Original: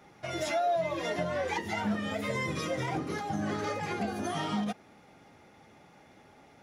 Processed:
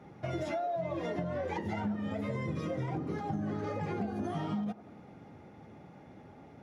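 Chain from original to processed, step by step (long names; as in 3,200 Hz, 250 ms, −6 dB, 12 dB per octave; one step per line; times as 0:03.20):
high-pass filter 97 Hz
spectral tilt −3.5 dB per octave
downward compressor, threshold −32 dBFS, peak gain reduction 12.5 dB
on a send: delay with a band-pass on its return 92 ms, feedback 63%, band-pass 670 Hz, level −15.5 dB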